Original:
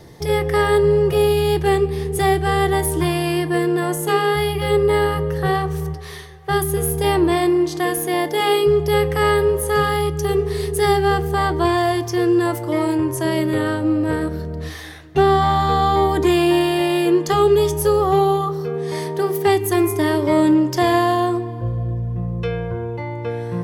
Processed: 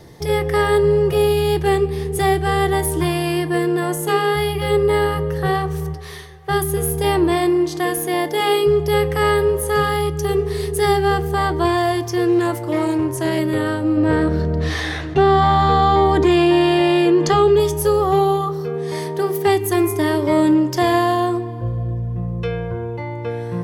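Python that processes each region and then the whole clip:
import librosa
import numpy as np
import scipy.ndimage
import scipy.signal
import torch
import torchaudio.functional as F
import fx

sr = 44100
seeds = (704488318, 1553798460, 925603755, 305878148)

y = fx.chain(x, sr, fx.quant_float(bits=8),
    fx.doppler_dist(depth_ms=0.13), at=(12.28, 13.39))
y = fx.chain(y, sr, fx.air_absorb(metres=68.0),
    fx.env_flatten(amount_pct=50), at=(13.97, 17.6))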